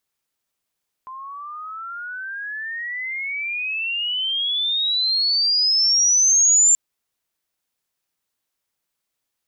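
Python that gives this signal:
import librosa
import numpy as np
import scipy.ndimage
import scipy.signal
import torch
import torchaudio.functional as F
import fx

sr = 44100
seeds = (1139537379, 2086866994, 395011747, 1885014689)

y = fx.riser_tone(sr, length_s=5.68, level_db=-11.0, wave='sine', hz=1030.0, rise_st=34.0, swell_db=21.5)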